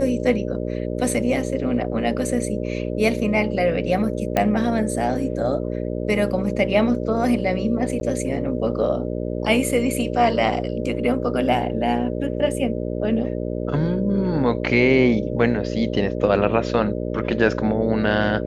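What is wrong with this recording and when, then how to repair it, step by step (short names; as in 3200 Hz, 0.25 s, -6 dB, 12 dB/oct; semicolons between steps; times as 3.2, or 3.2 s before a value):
buzz 60 Hz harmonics 10 -26 dBFS
4.37 pop -7 dBFS
8–8.01 gap 10 ms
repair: de-click; de-hum 60 Hz, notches 10; interpolate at 8, 10 ms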